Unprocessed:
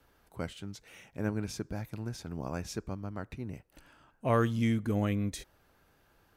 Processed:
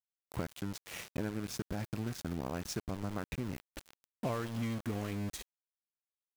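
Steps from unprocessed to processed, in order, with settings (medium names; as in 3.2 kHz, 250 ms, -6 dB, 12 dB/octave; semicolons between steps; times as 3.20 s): compression 8:1, threshold -45 dBFS, peak gain reduction 22 dB; small samples zeroed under -50.5 dBFS; trim +11 dB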